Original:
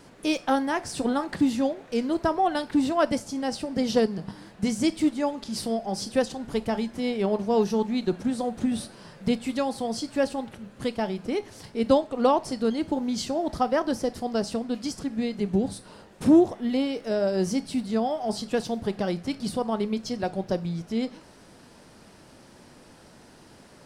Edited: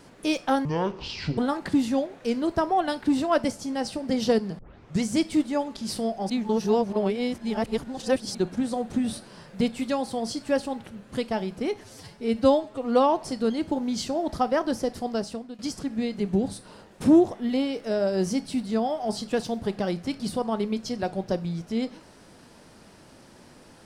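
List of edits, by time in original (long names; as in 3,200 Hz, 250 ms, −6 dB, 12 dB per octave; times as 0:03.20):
0:00.65–0:01.05: play speed 55%
0:04.26: tape start 0.43 s
0:05.97–0:08.02: reverse
0:11.48–0:12.42: time-stretch 1.5×
0:14.26–0:14.79: fade out, to −15 dB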